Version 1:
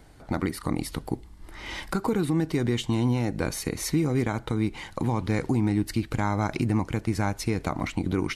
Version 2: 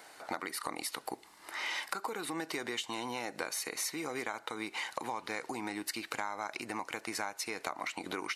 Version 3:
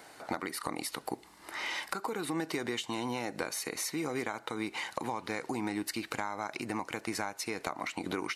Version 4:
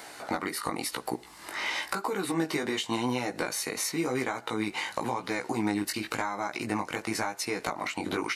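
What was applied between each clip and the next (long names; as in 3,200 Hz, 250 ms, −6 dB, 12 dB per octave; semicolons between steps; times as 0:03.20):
high-pass filter 720 Hz 12 dB per octave; notch filter 3,300 Hz, Q 16; downward compressor 6 to 1, threshold −41 dBFS, peak gain reduction 15.5 dB; level +7 dB
low-shelf EQ 310 Hz +11 dB
chorus effect 0.94 Hz, delay 15.5 ms, depth 4.6 ms; one half of a high-frequency compander encoder only; level +7.5 dB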